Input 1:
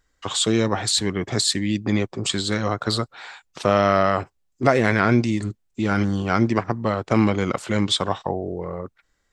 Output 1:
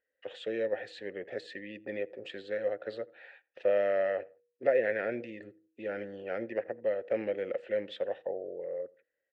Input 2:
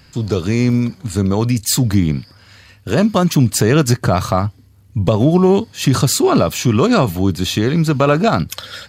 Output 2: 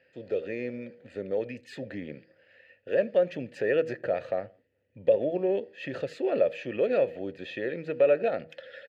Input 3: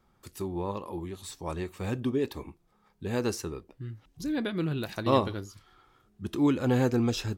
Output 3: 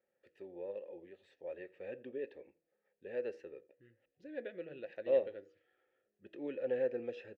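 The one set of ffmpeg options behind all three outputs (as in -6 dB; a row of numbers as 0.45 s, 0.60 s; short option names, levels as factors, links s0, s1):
-filter_complex "[0:a]asplit=3[s0][s1][s2];[s0]bandpass=f=530:t=q:w=8,volume=1[s3];[s1]bandpass=f=1840:t=q:w=8,volume=0.501[s4];[s2]bandpass=f=2480:t=q:w=8,volume=0.355[s5];[s3][s4][s5]amix=inputs=3:normalize=0,bass=f=250:g=-3,treble=f=4000:g=-15,bandreject=f=160.4:t=h:w=4,bandreject=f=320.8:t=h:w=4,bandreject=f=481.2:t=h:w=4,asplit=2[s6][s7];[s7]adelay=84,lowpass=f=1900:p=1,volume=0.0708,asplit=2[s8][s9];[s9]adelay=84,lowpass=f=1900:p=1,volume=0.36[s10];[s8][s10]amix=inputs=2:normalize=0[s11];[s6][s11]amix=inputs=2:normalize=0"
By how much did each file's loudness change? -12.0 LU, -13.5 LU, -9.5 LU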